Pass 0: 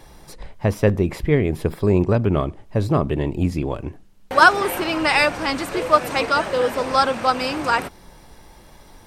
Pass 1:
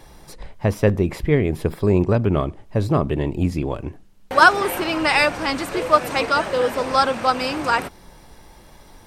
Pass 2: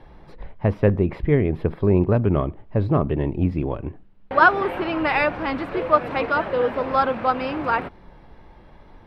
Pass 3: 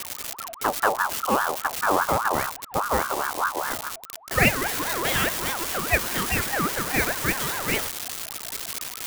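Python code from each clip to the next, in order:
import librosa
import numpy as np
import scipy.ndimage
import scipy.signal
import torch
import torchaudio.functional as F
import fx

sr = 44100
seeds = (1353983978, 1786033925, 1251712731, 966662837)

y1 = x
y2 = fx.wow_flutter(y1, sr, seeds[0], rate_hz=2.1, depth_cents=26.0)
y2 = fx.air_absorb(y2, sr, metres=410.0)
y3 = y2 + 0.5 * 10.0 ** (-11.0 / 20.0) * np.diff(np.sign(y2), prepend=np.sign(y2[:1]))
y3 = fx.ring_lfo(y3, sr, carrier_hz=1000.0, swing_pct=35, hz=4.9)
y3 = y3 * 10.0 ** (-2.0 / 20.0)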